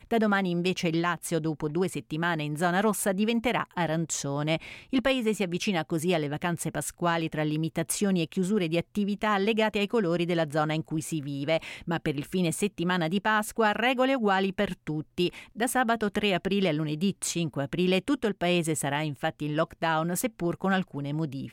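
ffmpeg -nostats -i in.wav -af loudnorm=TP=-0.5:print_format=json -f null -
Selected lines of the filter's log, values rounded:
"input_i" : "-28.0",
"input_tp" : "-13.5",
"input_lra" : "2.6",
"input_thresh" : "-38.0",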